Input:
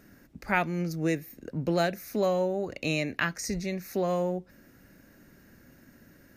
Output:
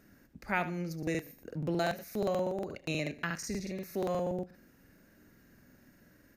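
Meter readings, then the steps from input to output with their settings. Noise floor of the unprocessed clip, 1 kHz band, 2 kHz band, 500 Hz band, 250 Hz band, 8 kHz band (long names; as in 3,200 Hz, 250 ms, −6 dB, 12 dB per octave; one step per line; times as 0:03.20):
−58 dBFS, −5.0 dB, −5.5 dB, −5.0 dB, −5.0 dB, −5.5 dB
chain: repeating echo 72 ms, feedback 22%, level −13 dB
regular buffer underruns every 0.12 s, samples 2,048, repeat, from 0:00.98
level −5.5 dB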